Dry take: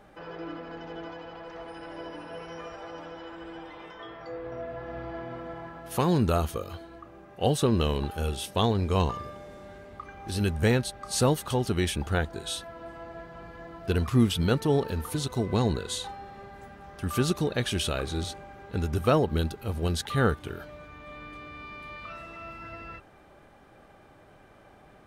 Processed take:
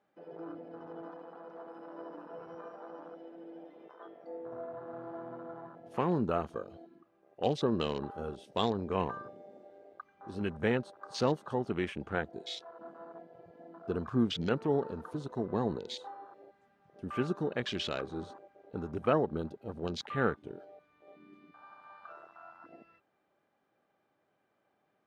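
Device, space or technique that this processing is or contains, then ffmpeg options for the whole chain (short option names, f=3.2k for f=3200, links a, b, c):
over-cleaned archive recording: -af "highpass=180,lowpass=6.6k,afwtdn=0.0141,volume=-4.5dB"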